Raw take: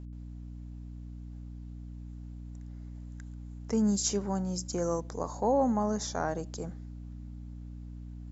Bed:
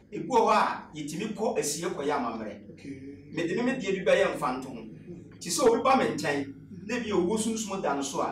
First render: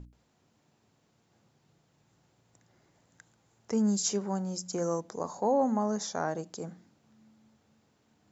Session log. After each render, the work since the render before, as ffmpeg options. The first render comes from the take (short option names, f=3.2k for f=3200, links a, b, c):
-af "bandreject=f=60:t=h:w=6,bandreject=f=120:t=h:w=6,bandreject=f=180:t=h:w=6,bandreject=f=240:t=h:w=6,bandreject=f=300:t=h:w=6"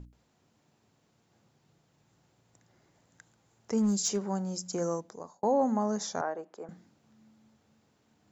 -filter_complex "[0:a]asettb=1/sr,asplit=3[a][b][c];[a]atrim=end=3.784[d];[b]atrim=start=3.78:end=4.21,asetpts=PTS-STARTPTS,afade=t=in:d=0.004:c=qsin,afade=t=out:st=0.426:d=0.004:c=qsin,volume=22dB,asoftclip=hard,volume=-22dB[e];[c]atrim=start=4.206[f];[d][e]acrossfade=d=0.004:c1=hsin:c2=qsin[g];[g][f]acrossfade=d=0.004:c1=qsin:c2=hsin,asettb=1/sr,asplit=3[h][i][j];[h]atrim=end=6.214[k];[i]atrim=start=6.21:end=6.69,asetpts=PTS-STARTPTS,afade=t=in:d=0.004:c=qsin,afade=t=out:st=0.476:d=0.004:c=qsin,acrossover=split=330 2300:gain=0.0794 1 0.112[l][m][n];[l][m][n]amix=inputs=3:normalize=0[o];[j]atrim=start=6.686[p];[k][o]acrossfade=d=0.004:c1=hsin:c2=qsin[q];[q][p]acrossfade=d=0.004:c1=qsin:c2=hsin,asplit=2[r][s];[r]atrim=end=5.43,asetpts=PTS-STARTPTS,afade=t=out:st=4.84:d=0.59[t];[s]atrim=start=5.43,asetpts=PTS-STARTPTS,afade=t=in:d=0.004:c=hsin[u];[t][u]concat=n=2:v=0:a=1"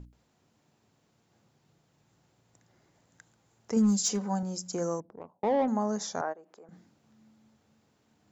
-filter_complex "[0:a]asettb=1/sr,asplit=3[a][b][c];[a]atrim=end=3.764[d];[b]atrim=start=3.76:end=4.43,asetpts=PTS-STARTPTS,afade=t=in:d=0.004:c=qsin,afade=t=out:st=0.666:d=0.004:c=qsin,aecho=1:1:4:0.65,atrim=end_sample=29547[e];[c]atrim=start=4.426[f];[d][e]acrossfade=d=0.004:c1=hsin:c2=qsin[g];[g][f]acrossfade=d=0.004:c1=qsin:c2=hsin,asettb=1/sr,asplit=3[h][i][j];[h]atrim=end=5.004[k];[i]atrim=start=5:end=5.68,asetpts=PTS-STARTPTS,afade=t=in:d=0.004:c=qsin,afade=t=out:st=0.676:d=0.004:c=qsin,adynamicsmooth=sensitivity=2:basefreq=640[l];[j]atrim=start=5.676[m];[k][l]acrossfade=d=0.004:c1=hsin:c2=qsin[n];[n][m]acrossfade=d=0.004:c1=qsin:c2=hsin,asplit=3[o][p][q];[o]afade=t=out:st=6.32:d=0.02[r];[p]acompressor=threshold=-52dB:ratio=3:attack=3.2:release=140:knee=1:detection=peak,afade=t=in:st=6.32:d=0.02,afade=t=out:st=6.72:d=0.02[s];[q]afade=t=in:st=6.72:d=0.02[t];[r][s][t]amix=inputs=3:normalize=0"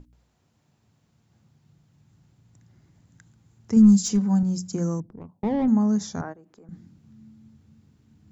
-af "bandreject=f=60:t=h:w=6,bandreject=f=120:t=h:w=6,bandreject=f=180:t=h:w=6,asubboost=boost=11:cutoff=180"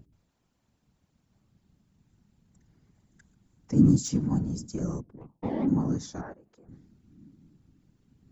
-af "afftfilt=real='hypot(re,im)*cos(2*PI*random(0))':imag='hypot(re,im)*sin(2*PI*random(1))':win_size=512:overlap=0.75"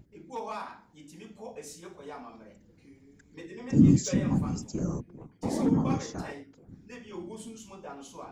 -filter_complex "[1:a]volume=-14.5dB[a];[0:a][a]amix=inputs=2:normalize=0"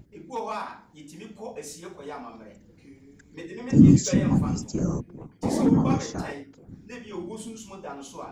-af "volume=5dB"